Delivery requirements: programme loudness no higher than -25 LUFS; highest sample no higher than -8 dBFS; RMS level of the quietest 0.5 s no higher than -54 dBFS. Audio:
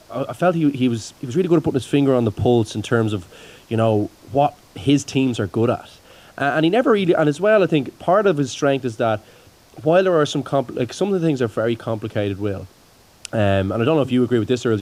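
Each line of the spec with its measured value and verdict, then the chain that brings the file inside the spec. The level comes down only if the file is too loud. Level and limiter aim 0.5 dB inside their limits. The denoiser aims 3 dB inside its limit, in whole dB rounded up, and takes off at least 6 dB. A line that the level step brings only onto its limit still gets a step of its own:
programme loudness -19.5 LUFS: fail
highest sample -5.5 dBFS: fail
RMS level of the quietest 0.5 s -51 dBFS: fail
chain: trim -6 dB

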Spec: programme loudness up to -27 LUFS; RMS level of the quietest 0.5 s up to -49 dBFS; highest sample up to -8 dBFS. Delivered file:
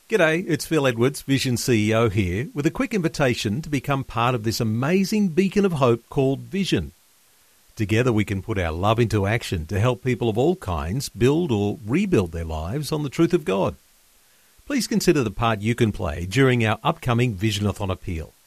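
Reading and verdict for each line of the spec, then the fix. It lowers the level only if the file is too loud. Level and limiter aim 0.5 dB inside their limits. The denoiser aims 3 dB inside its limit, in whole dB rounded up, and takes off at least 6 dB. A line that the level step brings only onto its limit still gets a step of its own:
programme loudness -22.5 LUFS: fail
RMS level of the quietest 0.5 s -57 dBFS: pass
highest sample -5.0 dBFS: fail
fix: trim -5 dB

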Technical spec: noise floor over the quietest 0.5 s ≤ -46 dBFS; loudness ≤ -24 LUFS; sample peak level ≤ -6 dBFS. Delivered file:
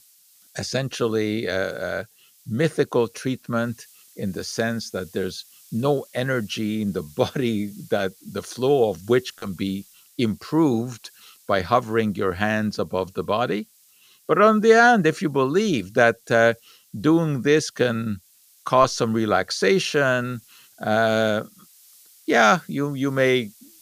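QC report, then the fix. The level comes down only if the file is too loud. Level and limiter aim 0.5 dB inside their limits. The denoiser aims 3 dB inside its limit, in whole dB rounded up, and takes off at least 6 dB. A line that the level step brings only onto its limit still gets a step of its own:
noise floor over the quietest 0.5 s -56 dBFS: pass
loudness -22.0 LUFS: fail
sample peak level -3.0 dBFS: fail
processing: trim -2.5 dB; peak limiter -6.5 dBFS

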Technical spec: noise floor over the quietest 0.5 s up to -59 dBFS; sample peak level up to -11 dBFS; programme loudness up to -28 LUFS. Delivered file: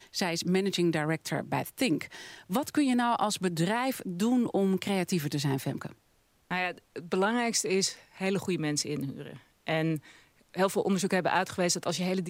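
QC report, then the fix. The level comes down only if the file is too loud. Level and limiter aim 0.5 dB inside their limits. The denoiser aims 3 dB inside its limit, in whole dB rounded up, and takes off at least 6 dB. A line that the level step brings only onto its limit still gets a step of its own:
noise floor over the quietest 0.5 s -68 dBFS: pass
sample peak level -12.0 dBFS: pass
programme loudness -29.5 LUFS: pass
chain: none needed

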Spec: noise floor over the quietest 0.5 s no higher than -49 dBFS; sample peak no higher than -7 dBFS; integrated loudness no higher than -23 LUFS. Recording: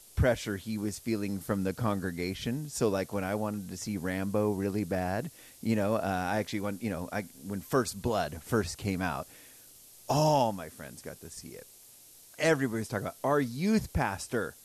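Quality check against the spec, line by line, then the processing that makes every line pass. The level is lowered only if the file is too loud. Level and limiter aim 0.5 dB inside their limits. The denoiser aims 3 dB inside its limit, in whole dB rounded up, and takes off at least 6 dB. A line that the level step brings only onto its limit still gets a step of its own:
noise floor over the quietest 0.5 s -55 dBFS: pass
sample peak -15.0 dBFS: pass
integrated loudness -31.5 LUFS: pass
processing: none needed

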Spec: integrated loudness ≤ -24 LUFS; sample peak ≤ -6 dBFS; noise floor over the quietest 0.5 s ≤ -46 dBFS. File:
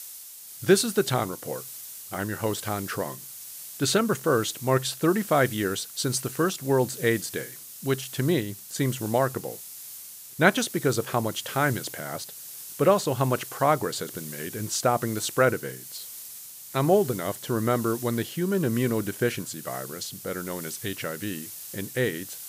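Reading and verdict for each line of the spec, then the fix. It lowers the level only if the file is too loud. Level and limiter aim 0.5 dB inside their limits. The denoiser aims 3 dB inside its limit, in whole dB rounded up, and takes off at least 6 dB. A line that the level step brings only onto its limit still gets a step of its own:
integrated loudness -26.5 LUFS: pass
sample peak -4.0 dBFS: fail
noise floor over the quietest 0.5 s -43 dBFS: fail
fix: noise reduction 6 dB, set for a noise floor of -43 dBFS; peak limiter -6.5 dBFS

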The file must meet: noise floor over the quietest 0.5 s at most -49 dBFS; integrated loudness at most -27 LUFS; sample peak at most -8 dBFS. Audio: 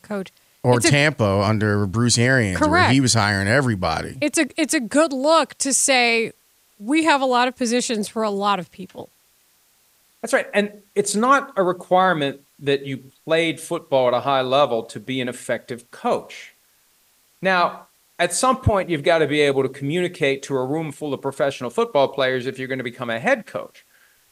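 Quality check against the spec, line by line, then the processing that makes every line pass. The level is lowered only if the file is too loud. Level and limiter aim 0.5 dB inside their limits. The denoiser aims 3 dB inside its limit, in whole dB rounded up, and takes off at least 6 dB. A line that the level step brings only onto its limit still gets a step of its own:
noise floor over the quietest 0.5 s -60 dBFS: pass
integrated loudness -20.0 LUFS: fail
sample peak -5.0 dBFS: fail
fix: trim -7.5 dB

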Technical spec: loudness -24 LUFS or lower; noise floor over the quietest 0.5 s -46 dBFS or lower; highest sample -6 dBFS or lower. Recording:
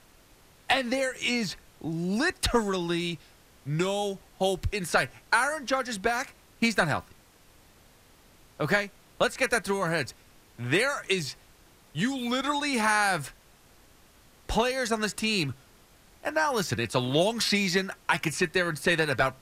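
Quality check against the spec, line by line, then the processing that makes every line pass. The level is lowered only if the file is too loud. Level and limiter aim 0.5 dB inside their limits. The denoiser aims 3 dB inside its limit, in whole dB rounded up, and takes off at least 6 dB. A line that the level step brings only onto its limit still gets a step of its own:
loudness -27.5 LUFS: pass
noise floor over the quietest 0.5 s -57 dBFS: pass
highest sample -11.5 dBFS: pass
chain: none needed

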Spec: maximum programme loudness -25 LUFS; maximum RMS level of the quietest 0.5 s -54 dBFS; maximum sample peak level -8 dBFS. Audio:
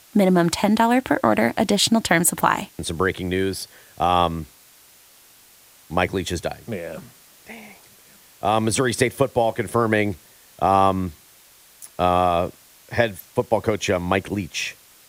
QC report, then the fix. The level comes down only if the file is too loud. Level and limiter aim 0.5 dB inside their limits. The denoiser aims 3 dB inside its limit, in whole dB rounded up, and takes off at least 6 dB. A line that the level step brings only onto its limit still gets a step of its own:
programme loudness -21.5 LUFS: fail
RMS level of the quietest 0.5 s -51 dBFS: fail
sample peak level -2.5 dBFS: fail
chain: trim -4 dB; peak limiter -8.5 dBFS

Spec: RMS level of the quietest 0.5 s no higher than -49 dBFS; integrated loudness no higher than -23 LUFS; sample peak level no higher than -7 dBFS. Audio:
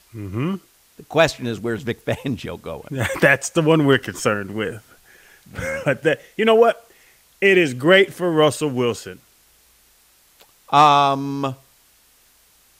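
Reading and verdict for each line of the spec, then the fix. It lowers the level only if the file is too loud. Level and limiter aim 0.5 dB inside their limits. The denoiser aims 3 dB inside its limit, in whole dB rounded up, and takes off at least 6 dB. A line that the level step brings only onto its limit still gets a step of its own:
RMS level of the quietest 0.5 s -56 dBFS: pass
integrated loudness -19.0 LUFS: fail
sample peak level -2.0 dBFS: fail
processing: trim -4.5 dB; peak limiter -7.5 dBFS

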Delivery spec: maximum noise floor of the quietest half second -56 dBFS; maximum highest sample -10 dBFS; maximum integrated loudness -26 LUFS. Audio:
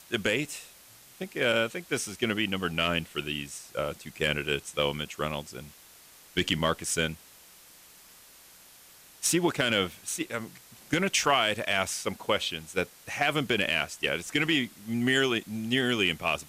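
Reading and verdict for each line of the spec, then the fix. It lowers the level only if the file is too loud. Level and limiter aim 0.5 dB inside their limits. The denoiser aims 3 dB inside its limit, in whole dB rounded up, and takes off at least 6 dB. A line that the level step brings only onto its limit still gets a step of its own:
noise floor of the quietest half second -54 dBFS: fail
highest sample -13.0 dBFS: pass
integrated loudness -28.5 LUFS: pass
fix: noise reduction 6 dB, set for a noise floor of -54 dBFS

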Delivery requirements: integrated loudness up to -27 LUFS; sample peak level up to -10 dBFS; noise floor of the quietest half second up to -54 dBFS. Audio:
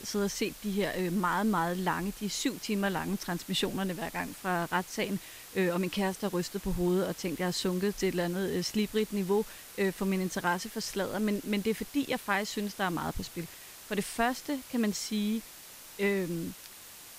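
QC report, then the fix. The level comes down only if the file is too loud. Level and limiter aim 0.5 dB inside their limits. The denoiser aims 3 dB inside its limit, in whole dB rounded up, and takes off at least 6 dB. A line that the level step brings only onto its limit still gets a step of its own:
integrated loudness -32.0 LUFS: pass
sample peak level -14.5 dBFS: pass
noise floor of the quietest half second -49 dBFS: fail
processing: noise reduction 8 dB, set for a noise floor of -49 dBFS

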